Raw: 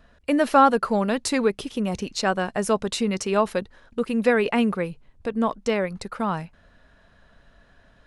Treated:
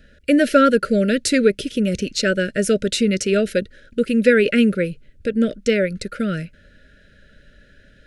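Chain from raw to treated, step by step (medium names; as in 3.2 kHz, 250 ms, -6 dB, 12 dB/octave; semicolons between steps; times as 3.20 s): Chebyshev band-stop 600–1400 Hz, order 4; trim +6.5 dB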